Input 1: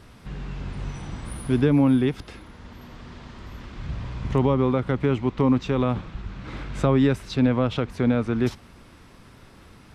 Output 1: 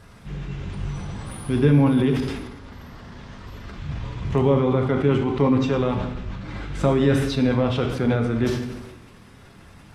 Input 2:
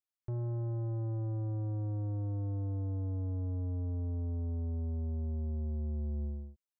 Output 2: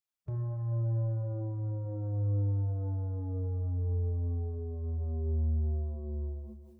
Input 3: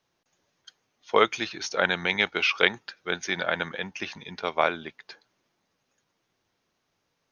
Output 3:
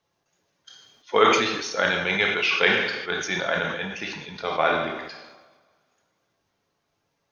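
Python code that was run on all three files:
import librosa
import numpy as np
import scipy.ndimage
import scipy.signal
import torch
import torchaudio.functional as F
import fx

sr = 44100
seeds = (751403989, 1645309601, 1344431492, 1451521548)

y = fx.spec_quant(x, sr, step_db=15)
y = fx.rev_double_slope(y, sr, seeds[0], early_s=0.85, late_s=2.4, knee_db=-18, drr_db=3.0)
y = fx.sustainer(y, sr, db_per_s=46.0)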